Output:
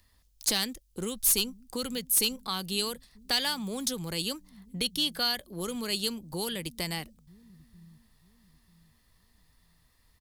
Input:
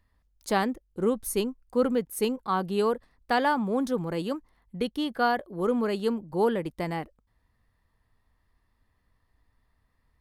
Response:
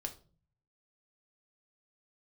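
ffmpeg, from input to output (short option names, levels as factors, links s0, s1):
-filter_complex "[0:a]acrossover=split=140|3300[s0][s1][s2];[s0]aecho=1:1:941|1882|2823|3764:0.316|0.101|0.0324|0.0104[s3];[s1]acompressor=threshold=0.0126:ratio=6[s4];[s2]aeval=exprs='0.0944*sin(PI/2*3.55*val(0)/0.0944)':c=same[s5];[s3][s4][s5]amix=inputs=3:normalize=0,volume=1.26"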